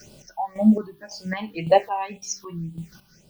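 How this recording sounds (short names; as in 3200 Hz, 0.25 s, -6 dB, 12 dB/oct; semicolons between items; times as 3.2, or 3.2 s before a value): a quantiser's noise floor 10-bit, dither triangular; phasing stages 6, 1.9 Hz, lowest notch 470–1700 Hz; chopped level 1.8 Hz, depth 65%, duty 40%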